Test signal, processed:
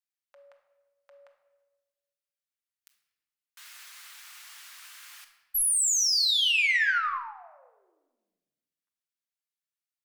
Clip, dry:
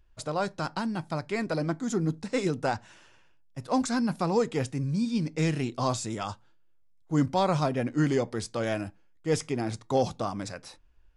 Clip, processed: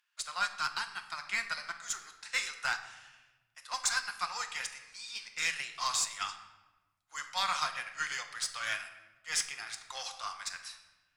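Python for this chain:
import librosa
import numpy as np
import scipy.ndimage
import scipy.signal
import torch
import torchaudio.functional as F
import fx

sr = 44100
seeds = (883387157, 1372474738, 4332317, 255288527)

y = scipy.signal.sosfilt(scipy.signal.butter(4, 1300.0, 'highpass', fs=sr, output='sos'), x)
y = fx.cheby_harmonics(y, sr, harmonics=(5, 6), levels_db=(-28, -30), full_scale_db=-21.5)
y = fx.room_shoebox(y, sr, seeds[0], volume_m3=770.0, walls='mixed', distance_m=0.88)
y = fx.upward_expand(y, sr, threshold_db=-43.0, expansion=1.5)
y = y * librosa.db_to_amplitude(5.0)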